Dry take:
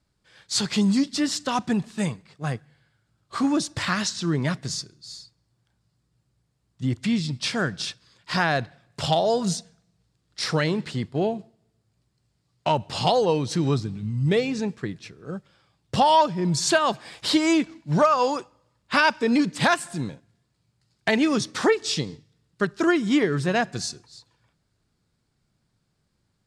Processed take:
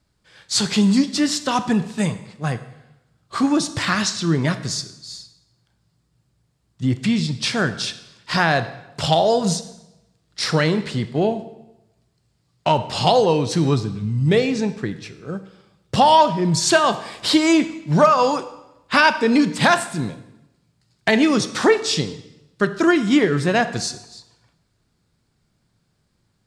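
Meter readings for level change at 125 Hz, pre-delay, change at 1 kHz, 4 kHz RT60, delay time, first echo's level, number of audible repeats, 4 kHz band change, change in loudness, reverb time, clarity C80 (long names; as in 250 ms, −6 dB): +4.5 dB, 18 ms, +5.0 dB, 0.85 s, no echo audible, no echo audible, no echo audible, +5.0 dB, +4.5 dB, 0.95 s, 15.0 dB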